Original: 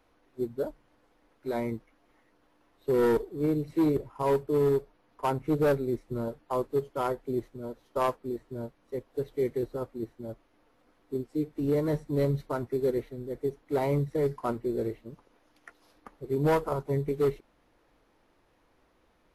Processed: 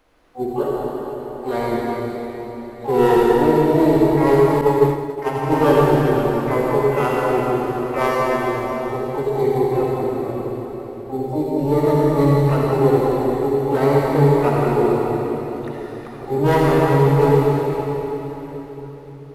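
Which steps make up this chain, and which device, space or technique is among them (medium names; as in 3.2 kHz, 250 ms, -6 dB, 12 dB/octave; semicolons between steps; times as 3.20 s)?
peaking EQ 180 Hz -4 dB 0.21 oct; shimmer-style reverb (harmony voices +12 st -9 dB; reverberation RT60 4.2 s, pre-delay 49 ms, DRR -5 dB); Schroeder reverb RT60 3.9 s, combs from 32 ms, DRR 19.5 dB; 4.61–5.52 s: expander -16 dBFS; trim +5.5 dB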